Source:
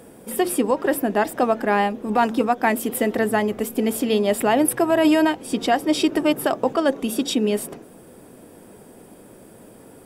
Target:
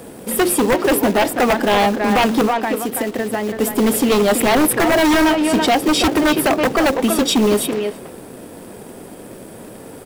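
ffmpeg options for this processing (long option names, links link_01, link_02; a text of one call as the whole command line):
ffmpeg -i in.wav -filter_complex "[0:a]acrossover=split=740|7300[link_01][link_02][link_03];[link_01]acrusher=bits=3:mode=log:mix=0:aa=0.000001[link_04];[link_04][link_02][link_03]amix=inputs=3:normalize=0,asettb=1/sr,asplit=3[link_05][link_06][link_07];[link_05]atrim=end=2.474[link_08];[link_06]atrim=start=2.47:end=3.6,asetpts=PTS-STARTPTS,afade=type=in:duration=0.004:curve=qsin,afade=type=out:start_time=1.126:duration=0.004:curve=qsin,acompressor=threshold=-27dB:ratio=6[link_09];[link_07]atrim=start=3.596[link_10];[link_08][link_09]acrossfade=duration=0.004:curve1=hsin:curve2=qsin[link_11];[link_11][link_10]acrossfade=duration=0.004:curve1=qsin:curve2=hsin,asplit=2[link_12][link_13];[link_13]adelay=330,highpass=300,lowpass=3400,asoftclip=type=hard:threshold=-15dB,volume=-7dB[link_14];[link_12][link_14]amix=inputs=2:normalize=0,aeval=exprs='0.562*sin(PI/2*3.16*val(0)/0.562)':channel_layout=same,volume=-5dB" out.wav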